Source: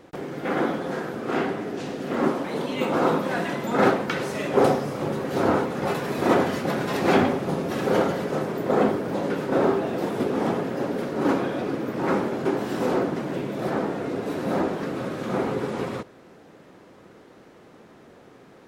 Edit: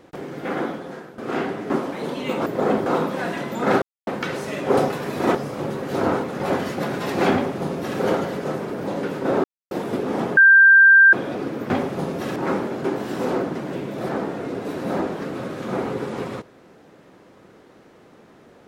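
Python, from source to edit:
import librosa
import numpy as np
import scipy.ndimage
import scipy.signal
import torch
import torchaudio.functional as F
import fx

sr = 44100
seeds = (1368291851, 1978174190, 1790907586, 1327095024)

y = fx.edit(x, sr, fx.fade_out_to(start_s=0.44, length_s=0.74, floor_db=-13.0),
    fx.cut(start_s=1.7, length_s=0.52),
    fx.insert_silence(at_s=3.94, length_s=0.25),
    fx.move(start_s=5.92, length_s=0.45, to_s=4.77),
    fx.duplicate(start_s=7.2, length_s=0.66, to_s=11.97),
    fx.move(start_s=8.57, length_s=0.4, to_s=2.98),
    fx.silence(start_s=9.71, length_s=0.27),
    fx.bleep(start_s=10.64, length_s=0.76, hz=1580.0, db=-7.5), tone=tone)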